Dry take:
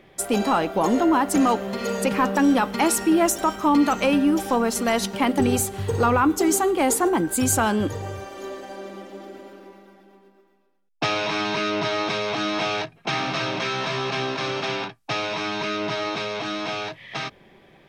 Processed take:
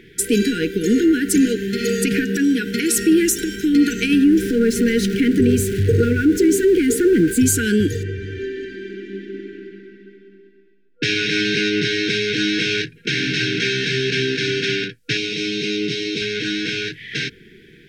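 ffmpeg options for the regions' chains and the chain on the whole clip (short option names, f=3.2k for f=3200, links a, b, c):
-filter_complex "[0:a]asettb=1/sr,asplit=3[a][b][c];[a]atrim=end=2.244[d];[b]atrim=start=2.24:end=2.96,asetpts=PTS-STARTPTS,afade=t=in:d=0.004:c=qsin,afade=t=out:st=0.716:d=0.004:c=qsin,highpass=68,acompressor=threshold=-21dB:ratio=4:attack=3.2:release=140:knee=1:detection=peak[e];[c]atrim=start=2.956[f];[d][e]acrossfade=d=0.004:c1=hsin:c2=qsin[g];[g][f]acrossfade=d=0.004:c1=qsin:c2=hsin,asettb=1/sr,asplit=3[h][i][j];[h]atrim=end=4.244[k];[i]atrim=start=4.24:end=7.46,asetpts=PTS-STARTPTS,afade=t=in:d=0.004:c=qsin,afade=t=out:st=3.216:d=0.004:c=qsin,aeval=exprs='val(0)+0.5*0.0473*sgn(val(0))':c=same,highshelf=f=2.2k:g=-11.5[l];[j]atrim=start=7.456[m];[k][l]acrossfade=d=0.004:c1=hsin:c2=qsin[n];[n][m]acrossfade=d=0.004:c1=qsin:c2=hsin,asettb=1/sr,asplit=3[o][p][q];[o]atrim=end=8.034[r];[p]atrim=start=8.03:end=11.03,asetpts=PTS-STARTPTS,afade=t=in:d=0.004:c=qsin,afade=t=out:st=2.996:d=0.004:c=qsin,lowpass=2.7k,aecho=1:1:191:0.631,atrim=end_sample=132300[s];[q]atrim=start=11.026[t];[r][s]acrossfade=d=0.004:c1=hsin:c2=qsin[u];[u][t]acrossfade=d=0.004:c1=qsin:c2=hsin,asettb=1/sr,asplit=3[v][w][x];[v]atrim=end=15.174[y];[w]atrim=start=15.17:end=16.22,asetpts=PTS-STARTPTS,afade=t=in:d=0.004:c=qsin,afade=t=out:st=1.046:d=0.004:c=qsin,highpass=130,equalizer=f=1.6k:t=o:w=0.58:g=-13[z];[x]atrim=start=16.216[aa];[y][z]acrossfade=d=0.004:c1=hsin:c2=qsin[ab];[ab][aa]acrossfade=d=0.004:c1=qsin:c2=hsin,alimiter=limit=-14.5dB:level=0:latency=1:release=66,afftfilt=real='re*(1-between(b*sr/4096,490,1400))':imag='im*(1-between(b*sr/4096,490,1400))':win_size=4096:overlap=0.75,volume=7.5dB"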